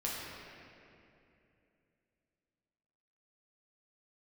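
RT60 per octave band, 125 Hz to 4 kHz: 3.4, 3.4, 3.1, 2.4, 2.6, 1.8 s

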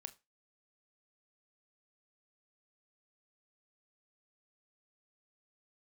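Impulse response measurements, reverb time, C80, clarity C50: 0.25 s, 26.0 dB, 20.0 dB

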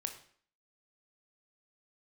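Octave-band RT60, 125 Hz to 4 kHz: 0.45, 0.55, 0.55, 0.55, 0.50, 0.50 s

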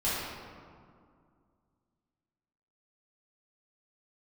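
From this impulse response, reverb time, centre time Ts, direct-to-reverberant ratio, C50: 2.2 s, 0.124 s, -11.0 dB, -2.5 dB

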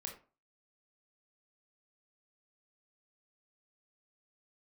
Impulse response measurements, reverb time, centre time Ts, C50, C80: 0.35 s, 21 ms, 8.0 dB, 13.5 dB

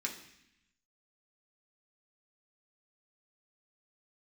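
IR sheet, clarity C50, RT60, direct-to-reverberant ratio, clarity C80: 8.5 dB, 0.75 s, -1.0 dB, 11.5 dB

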